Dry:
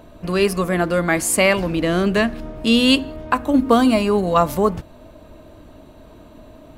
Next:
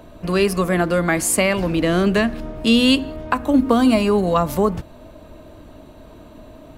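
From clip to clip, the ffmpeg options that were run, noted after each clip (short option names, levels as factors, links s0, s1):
-filter_complex "[0:a]acrossover=split=260[s0][s1];[s1]acompressor=threshold=0.158:ratio=6[s2];[s0][s2]amix=inputs=2:normalize=0,volume=1.19"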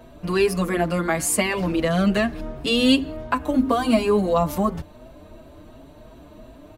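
-filter_complex "[0:a]asplit=2[s0][s1];[s1]adelay=5.9,afreqshift=2.8[s2];[s0][s2]amix=inputs=2:normalize=1"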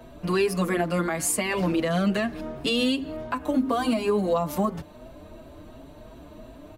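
-filter_complex "[0:a]acrossover=split=120[s0][s1];[s0]acompressor=threshold=0.00631:ratio=6[s2];[s2][s1]amix=inputs=2:normalize=0,alimiter=limit=0.178:level=0:latency=1:release=210"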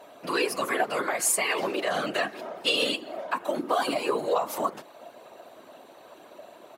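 -af "afftfilt=real='hypot(re,im)*cos(2*PI*random(0))':imag='hypot(re,im)*sin(2*PI*random(1))':win_size=512:overlap=0.75,highpass=530,volume=2.51"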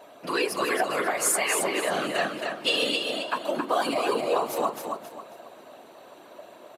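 -af "aecho=1:1:270|540|810|1080:0.562|0.169|0.0506|0.0152,aresample=32000,aresample=44100"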